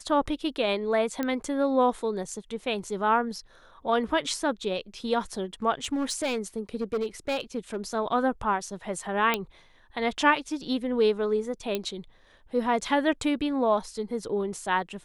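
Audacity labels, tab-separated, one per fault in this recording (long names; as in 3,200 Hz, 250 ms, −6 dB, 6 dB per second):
1.230000	1.230000	click −15 dBFS
5.840000	7.760000	clipping −23.5 dBFS
9.340000	9.340000	click −10 dBFS
11.750000	11.750000	click −14 dBFS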